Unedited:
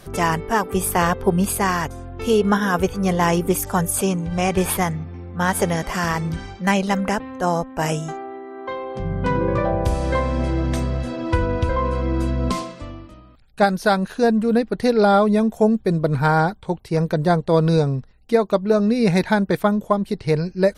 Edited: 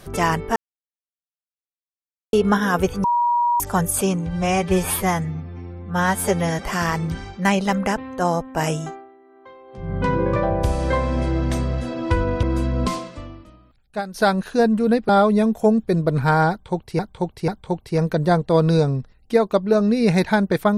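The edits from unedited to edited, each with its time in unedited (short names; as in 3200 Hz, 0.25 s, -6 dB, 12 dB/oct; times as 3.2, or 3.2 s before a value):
0.56–2.33 mute
3.04–3.6 bleep 957 Hz -15.5 dBFS
4.29–5.85 stretch 1.5×
8.06–9.17 dip -15.5 dB, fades 0.33 s quadratic
11.65–12.07 cut
12.68–13.78 fade out, to -13.5 dB
14.73–15.06 cut
16.47–16.96 loop, 3 plays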